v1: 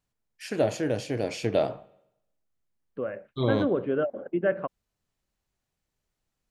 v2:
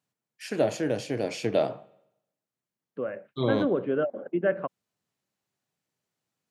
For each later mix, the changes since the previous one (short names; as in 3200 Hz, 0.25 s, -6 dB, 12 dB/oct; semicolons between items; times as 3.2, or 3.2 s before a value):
master: add HPF 120 Hz 24 dB/oct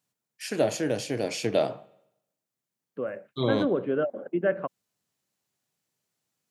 first voice: add high shelf 4300 Hz +8 dB